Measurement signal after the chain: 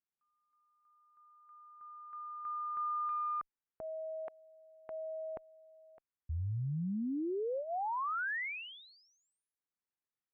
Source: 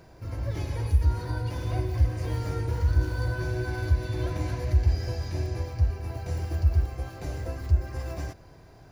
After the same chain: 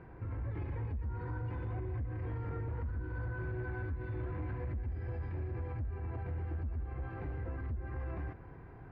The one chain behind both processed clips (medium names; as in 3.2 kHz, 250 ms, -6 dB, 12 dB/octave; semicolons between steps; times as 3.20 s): peaking EQ 620 Hz -13.5 dB 0.23 oct; compression 5:1, threshold -27 dBFS; one-sided clip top -27.5 dBFS, bottom -26 dBFS; peak limiter -33.5 dBFS; low-pass 2.1 kHz 24 dB/octave; trim +1 dB